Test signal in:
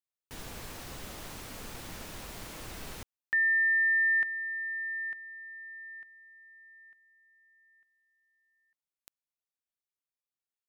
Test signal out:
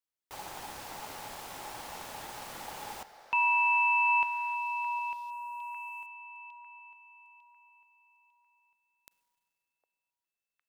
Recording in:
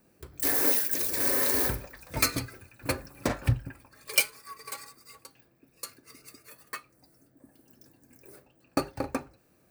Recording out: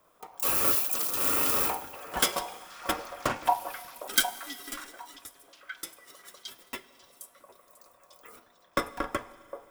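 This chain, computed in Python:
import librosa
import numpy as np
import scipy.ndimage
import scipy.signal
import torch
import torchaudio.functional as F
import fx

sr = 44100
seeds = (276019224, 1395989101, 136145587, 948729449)

y = x * np.sin(2.0 * np.pi * 840.0 * np.arange(len(x)) / sr)
y = fx.echo_stepped(y, sr, ms=758, hz=610.0, octaves=1.4, feedback_pct=70, wet_db=-8)
y = fx.rev_schroeder(y, sr, rt60_s=2.4, comb_ms=33, drr_db=17.0)
y = y * librosa.db_to_amplitude(2.5)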